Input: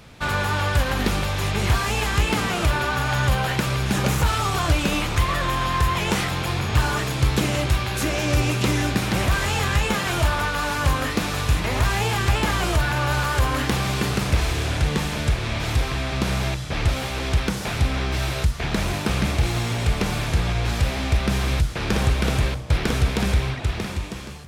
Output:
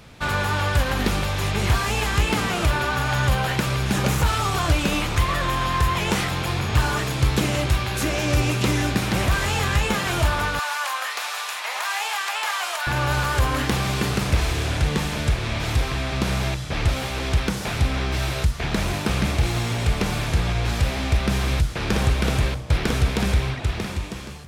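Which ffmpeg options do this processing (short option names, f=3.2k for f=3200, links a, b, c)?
-filter_complex "[0:a]asettb=1/sr,asplit=3[a][b][c];[a]atrim=end=10.594[d];[b]atrim=start=10.59:end=12.87,asetpts=PTS-STARTPTS,afade=t=in:d=0.004:c=qsin,afade=t=out:st=2.276:d=0.004:c=qsin,highpass=f=730:w=0.5412,highpass=f=730:w=1.3066[e];[c]atrim=start=12.866[f];[d][e]acrossfade=d=0.004:c1=hsin:c2=qsin[g];[g][f]acrossfade=d=0.004:c1=qsin:c2=hsin"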